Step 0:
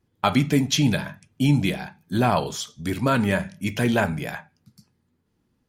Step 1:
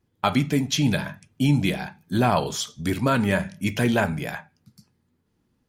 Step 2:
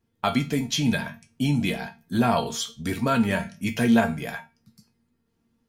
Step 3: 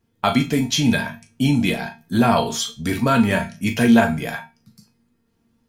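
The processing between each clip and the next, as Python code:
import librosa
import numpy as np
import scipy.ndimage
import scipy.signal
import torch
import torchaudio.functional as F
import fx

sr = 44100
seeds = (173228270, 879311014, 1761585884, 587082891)

y1 = fx.rider(x, sr, range_db=4, speed_s=0.5)
y2 = fx.comb_fb(y1, sr, f0_hz=230.0, decay_s=0.24, harmonics='all', damping=0.0, mix_pct=80)
y2 = y2 * 10.0 ** (8.0 / 20.0)
y3 = fx.doubler(y2, sr, ms=38.0, db=-10)
y3 = y3 * 10.0 ** (5.0 / 20.0)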